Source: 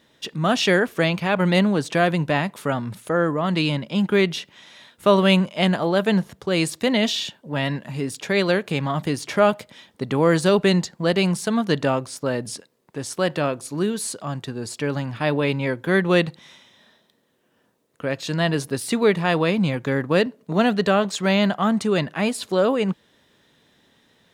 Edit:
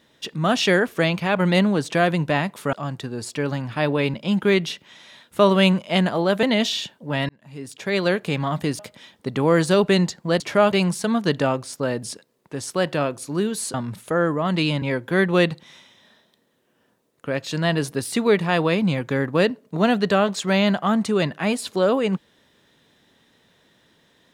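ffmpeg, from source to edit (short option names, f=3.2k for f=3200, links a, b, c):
-filter_complex "[0:a]asplit=10[a][b][c][d][e][f][g][h][i][j];[a]atrim=end=2.732[k];[b]atrim=start=14.168:end=15.582[l];[c]atrim=start=3.808:end=6.102[m];[d]atrim=start=6.858:end=7.72,asetpts=PTS-STARTPTS,afade=t=out:st=0.858:d=0.004:c=hsin[n];[e]atrim=start=7.72:end=9.222,asetpts=PTS-STARTPTS,afade=t=in:d=0.85[o];[f]atrim=start=9.538:end=11.152[p];[g]atrim=start=9.218:end=9.542[q];[h]atrim=start=11.148:end=14.172[r];[i]atrim=start=2.728:end=3.812[s];[j]atrim=start=15.578[t];[k][l]acrossfade=d=0.004:c1=hsin:c2=hsin[u];[u][m]acrossfade=d=0.004:c1=hsin:c2=hsin[v];[n][o]concat=n=2:v=0:a=1[w];[v][w]acrossfade=d=0.004:c1=hsin:c2=hsin[x];[x][p]acrossfade=d=0.004:c1=hsin:c2=hsin[y];[y][q]acrossfade=d=0.004:c1=hsin:c2=hsin[z];[z][r]acrossfade=d=0.004:c1=hsin:c2=hsin[aa];[aa][s]acrossfade=d=0.004:c1=hsin:c2=hsin[ab];[ab][t]acrossfade=d=0.004:c1=hsin:c2=hsin"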